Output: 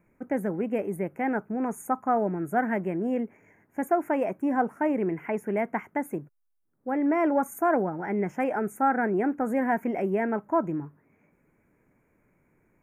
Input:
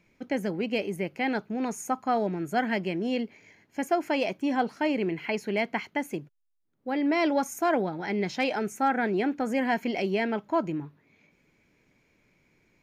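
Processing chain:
Chebyshev band-stop filter 1,500–9,800 Hz, order 2
level +2 dB

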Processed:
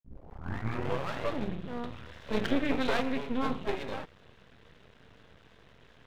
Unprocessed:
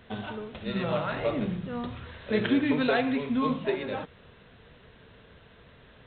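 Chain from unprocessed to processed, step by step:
turntable start at the beginning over 1.14 s
half-wave rectification

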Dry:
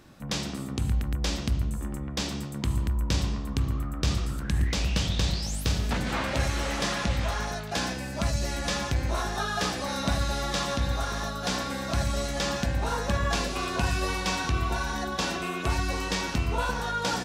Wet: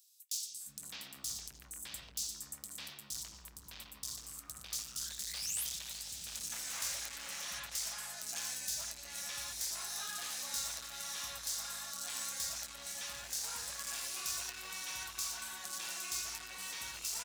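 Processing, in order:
hard clipping −28.5 dBFS, distortion −8 dB
first-order pre-emphasis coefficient 0.97
three-band delay without the direct sound highs, lows, mids 460/610 ms, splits 370/3,800 Hz
dynamic equaliser 7,000 Hz, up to +3 dB, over −56 dBFS, Q 1.3
level +1 dB

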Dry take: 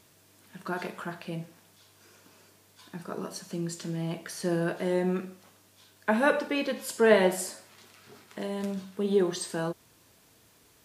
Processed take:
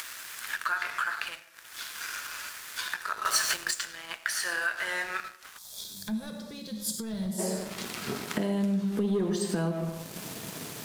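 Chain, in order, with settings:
upward compression, threshold −31 dBFS
high-pass filter sweep 1,500 Hz → 160 Hz, 0:05.52–0:06.03
comb and all-pass reverb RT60 0.84 s, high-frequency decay 0.3×, pre-delay 55 ms, DRR 8.5 dB
leveller curve on the samples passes 2
downward compressor 6 to 1, threshold −26 dBFS, peak gain reduction 14.5 dB
0:03.25–0:03.71: leveller curve on the samples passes 3
0:05.58–0:07.39: gain on a spectral selection 230–3,200 Hz −17 dB

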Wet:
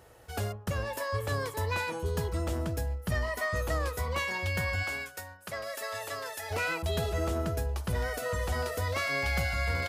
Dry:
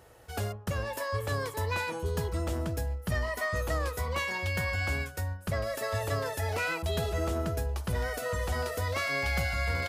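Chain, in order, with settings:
0:04.82–0:06.50: high-pass filter 590 Hz → 1,300 Hz 6 dB per octave

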